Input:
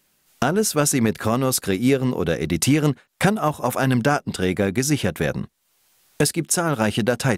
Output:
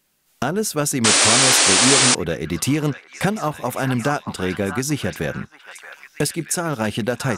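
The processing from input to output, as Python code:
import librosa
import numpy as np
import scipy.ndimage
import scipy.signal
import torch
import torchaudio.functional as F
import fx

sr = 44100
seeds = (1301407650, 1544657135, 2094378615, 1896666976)

y = fx.echo_stepped(x, sr, ms=626, hz=1200.0, octaves=0.7, feedback_pct=70, wet_db=-5)
y = fx.spec_paint(y, sr, seeds[0], shape='noise', start_s=1.04, length_s=1.11, low_hz=230.0, high_hz=9800.0, level_db=-13.0)
y = F.gain(torch.from_numpy(y), -2.0).numpy()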